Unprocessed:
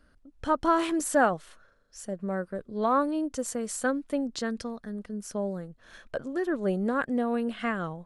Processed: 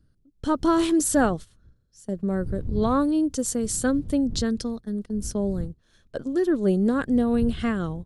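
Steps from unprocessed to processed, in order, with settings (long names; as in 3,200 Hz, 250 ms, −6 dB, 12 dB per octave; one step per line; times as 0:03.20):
wind on the microphone 93 Hz −44 dBFS
flat-topped bell 1,200 Hz −9 dB 2.6 octaves
noise gate −40 dBFS, range −14 dB
level +7.5 dB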